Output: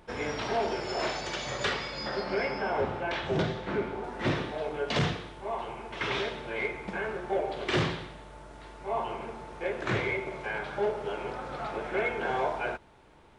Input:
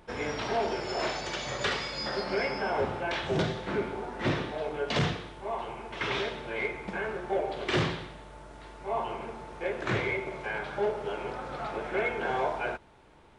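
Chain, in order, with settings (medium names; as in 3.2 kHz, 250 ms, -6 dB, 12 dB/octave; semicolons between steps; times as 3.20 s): 1.71–4.04 s: treble shelf 6.7 kHz -10 dB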